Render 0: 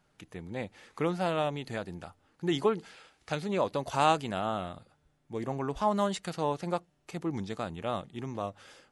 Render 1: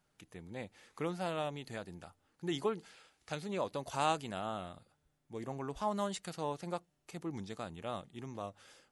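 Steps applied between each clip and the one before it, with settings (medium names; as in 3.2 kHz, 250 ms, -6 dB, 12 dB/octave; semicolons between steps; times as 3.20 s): treble shelf 5.9 kHz +7.5 dB; trim -7.5 dB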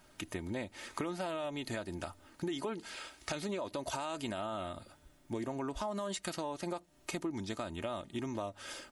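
comb 3.2 ms, depth 52%; peak limiter -30 dBFS, peak gain reduction 11.5 dB; compression 6:1, threshold -50 dBFS, peak gain reduction 15 dB; trim +14.5 dB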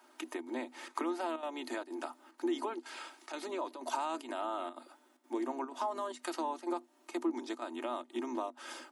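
octave divider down 2 oct, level +1 dB; square tremolo 2.1 Hz, depth 65%, duty 85%; rippled Chebyshev high-pass 240 Hz, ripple 9 dB; trim +6 dB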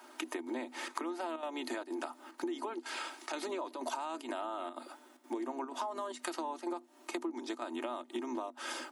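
compression 6:1, threshold -43 dBFS, peak gain reduction 14 dB; trim +7.5 dB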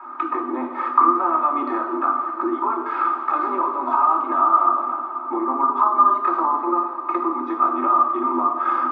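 resonant low-pass 1.2 kHz, resonance Q 15; echo that smears into a reverb 572 ms, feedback 53%, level -13 dB; reverberation RT60 1.1 s, pre-delay 3 ms, DRR -0.5 dB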